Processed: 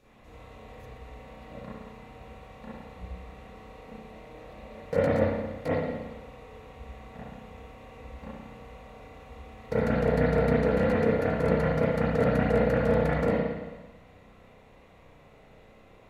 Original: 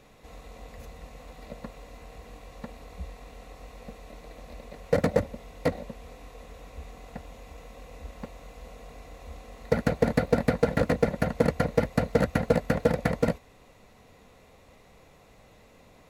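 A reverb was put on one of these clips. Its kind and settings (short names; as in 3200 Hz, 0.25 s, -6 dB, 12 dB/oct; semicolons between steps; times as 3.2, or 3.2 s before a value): spring tank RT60 1.2 s, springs 32/55 ms, chirp 60 ms, DRR -10 dB; gain -9.5 dB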